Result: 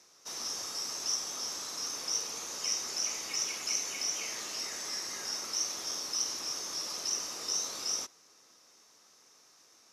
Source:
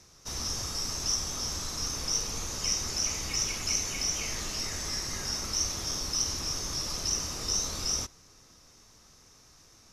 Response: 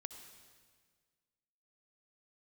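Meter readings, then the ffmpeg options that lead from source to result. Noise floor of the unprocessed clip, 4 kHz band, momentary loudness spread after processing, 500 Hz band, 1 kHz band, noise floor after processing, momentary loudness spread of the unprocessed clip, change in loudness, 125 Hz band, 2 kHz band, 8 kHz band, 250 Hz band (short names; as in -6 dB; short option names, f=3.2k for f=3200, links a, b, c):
-58 dBFS, -3.0 dB, 4 LU, -4.5 dB, -3.0 dB, -62 dBFS, 4 LU, -3.0 dB, under -20 dB, -3.0 dB, -3.0 dB, -9.5 dB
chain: -af "highpass=360,volume=-3dB"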